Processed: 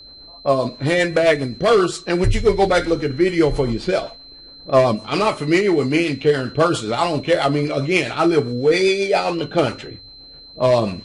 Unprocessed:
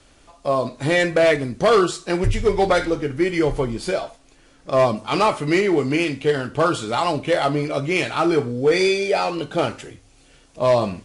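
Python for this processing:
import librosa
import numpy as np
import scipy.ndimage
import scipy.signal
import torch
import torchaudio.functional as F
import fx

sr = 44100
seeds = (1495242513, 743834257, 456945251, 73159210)

p1 = fx.env_lowpass(x, sr, base_hz=1000.0, full_db=-17.0)
p2 = fx.rider(p1, sr, range_db=10, speed_s=0.5)
p3 = p1 + (p2 * librosa.db_to_amplitude(1.0))
p4 = fx.rotary(p3, sr, hz=7.5)
p5 = p4 + 10.0 ** (-37.0 / 20.0) * np.sin(2.0 * np.pi * 4100.0 * np.arange(len(p4)) / sr)
y = p5 * librosa.db_to_amplitude(-2.5)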